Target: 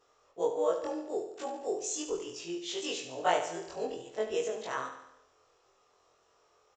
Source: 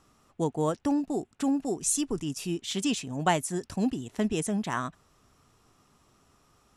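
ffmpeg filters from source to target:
-af "afftfilt=real='re':imag='-im':win_size=2048:overlap=0.75,adynamicequalizer=threshold=0.00224:dfrequency=800:dqfactor=3.3:tfrequency=800:tqfactor=3.3:attack=5:release=100:ratio=0.375:range=3.5:mode=cutabove:tftype=bell,aresample=16000,aresample=44100,lowshelf=f=320:t=q:w=3:g=-13,aecho=1:1:72|144|216|288|360|432:0.355|0.195|0.107|0.059|0.0325|0.0179"

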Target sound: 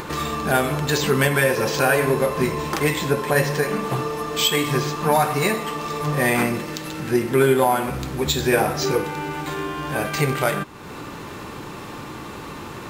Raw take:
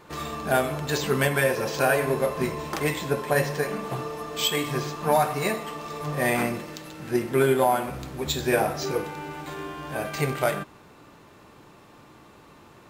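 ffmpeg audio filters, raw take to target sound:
-filter_complex "[0:a]equalizer=f=650:w=4.1:g=-5.5,asplit=2[s0][s1];[s1]alimiter=limit=0.112:level=0:latency=1:release=141,volume=1.12[s2];[s0][s2]amix=inputs=2:normalize=0,acompressor=mode=upward:threshold=0.0562:ratio=2.5,volume=1.12"

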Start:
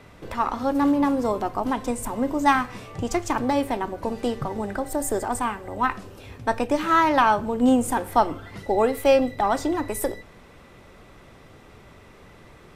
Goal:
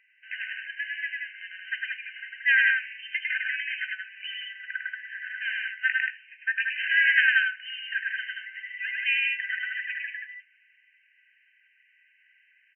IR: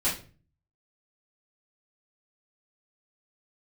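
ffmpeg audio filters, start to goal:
-af "agate=range=0.2:threshold=0.0112:ratio=16:detection=peak,aecho=1:1:102|180.8:0.794|0.631,afftfilt=real='re*between(b*sr/4096,1500,3100)':imag='im*between(b*sr/4096,1500,3100)':win_size=4096:overlap=0.75,volume=2.11"

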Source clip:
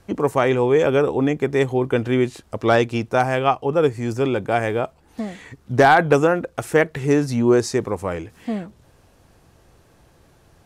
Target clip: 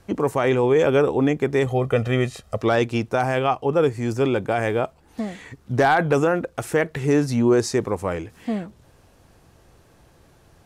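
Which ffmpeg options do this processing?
-filter_complex "[0:a]asettb=1/sr,asplit=3[s0][s1][s2];[s0]atrim=end=1.664[s3];[s1]atrim=start=1.66:end=2.62,asetpts=PTS-STARTPTS,afade=t=in:d=0.004:c=qsin,afade=t=out:st=0.956:d=0.004:c=qsin,aecho=1:1:1.6:0.74,atrim=end_sample=42336[s4];[s2]atrim=start=2.616[s5];[s3][s4]acrossfade=d=0.004:c1=hsin:c2=qsin[s6];[s6][s5]acrossfade=d=0.004:c1=qsin:c2=hsin,alimiter=limit=0.316:level=0:latency=1:release=16"

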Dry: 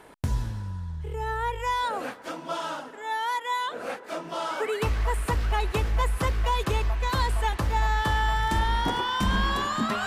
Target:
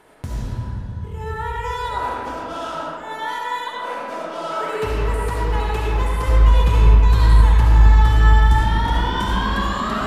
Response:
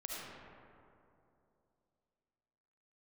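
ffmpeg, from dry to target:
-filter_complex "[0:a]asplit=3[s0][s1][s2];[s0]afade=t=out:st=6.27:d=0.02[s3];[s1]asubboost=boost=3:cutoff=220,afade=t=in:st=6.27:d=0.02,afade=t=out:st=8.55:d=0.02[s4];[s2]afade=t=in:st=8.55:d=0.02[s5];[s3][s4][s5]amix=inputs=3:normalize=0[s6];[1:a]atrim=start_sample=2205[s7];[s6][s7]afir=irnorm=-1:irlink=0,volume=1.5"

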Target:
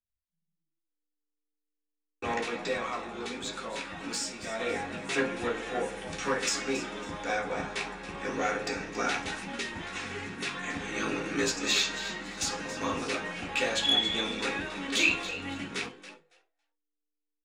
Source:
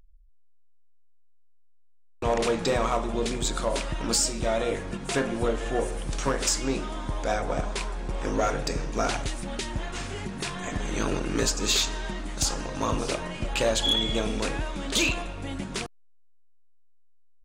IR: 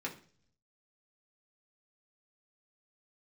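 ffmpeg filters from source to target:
-filter_complex "[0:a]asplit=4[s0][s1][s2][s3];[s1]adelay=277,afreqshift=150,volume=0.224[s4];[s2]adelay=554,afreqshift=300,volume=0.0716[s5];[s3]adelay=831,afreqshift=450,volume=0.0229[s6];[s0][s4][s5][s6]amix=inputs=4:normalize=0,asplit=3[s7][s8][s9];[s7]afade=t=out:st=2.4:d=0.02[s10];[s8]flanger=delay=4.4:depth=9.5:regen=78:speed=1.1:shape=sinusoidal,afade=t=in:st=2.4:d=0.02,afade=t=out:st=4.58:d=0.02[s11];[s9]afade=t=in:st=4.58:d=0.02[s12];[s10][s11][s12]amix=inputs=3:normalize=0,bandreject=f=50:t=h:w=6,bandreject=f=100:t=h:w=6,bandreject=f=150:t=h:w=6,bandreject=f=200:t=h:w=6,agate=range=0.0224:threshold=0.00708:ratio=3:detection=peak,lowpass=f=2100:p=1,tiltshelf=f=1400:g=-9[s13];[1:a]atrim=start_sample=2205,atrim=end_sample=3528[s14];[s13][s14]afir=irnorm=-1:irlink=0"

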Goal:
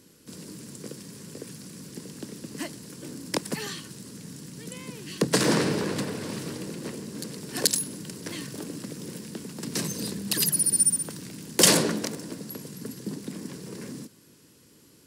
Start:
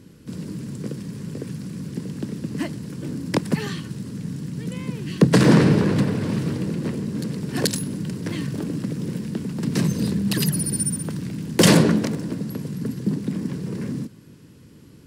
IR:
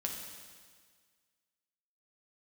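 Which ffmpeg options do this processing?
-af "bass=f=250:g=-11,treble=f=4000:g=9,volume=0.596"

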